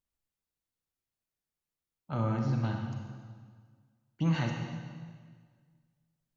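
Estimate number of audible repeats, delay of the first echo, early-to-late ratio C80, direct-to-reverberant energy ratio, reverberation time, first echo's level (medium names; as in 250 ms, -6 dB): no echo, no echo, 4.5 dB, 2.0 dB, 1.7 s, no echo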